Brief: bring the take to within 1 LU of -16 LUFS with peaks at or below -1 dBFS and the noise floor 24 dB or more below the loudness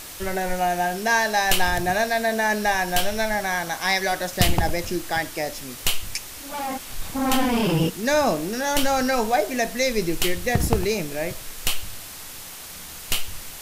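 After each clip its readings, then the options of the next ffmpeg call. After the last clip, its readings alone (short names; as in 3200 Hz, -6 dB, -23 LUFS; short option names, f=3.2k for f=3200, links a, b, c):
noise floor -38 dBFS; noise floor target -48 dBFS; loudness -23.5 LUFS; peak -6.5 dBFS; loudness target -16.0 LUFS
-> -af "afftdn=nr=10:nf=-38"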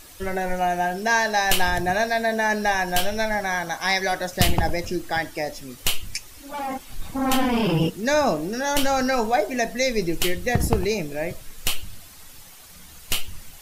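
noise floor -45 dBFS; noise floor target -48 dBFS
-> -af "afftdn=nr=6:nf=-45"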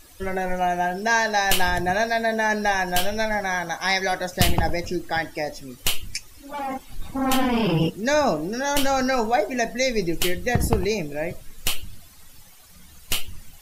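noise floor -48 dBFS; loudness -23.5 LUFS; peak -6.5 dBFS; loudness target -16.0 LUFS
-> -af "volume=7.5dB,alimiter=limit=-1dB:level=0:latency=1"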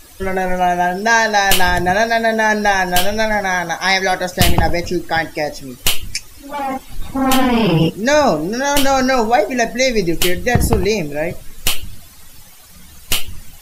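loudness -16.0 LUFS; peak -1.0 dBFS; noise floor -40 dBFS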